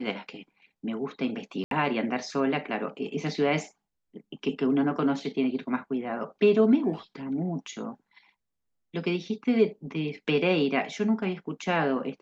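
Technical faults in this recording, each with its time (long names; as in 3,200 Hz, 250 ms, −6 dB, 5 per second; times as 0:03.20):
0:01.64–0:01.71: drop-out 72 ms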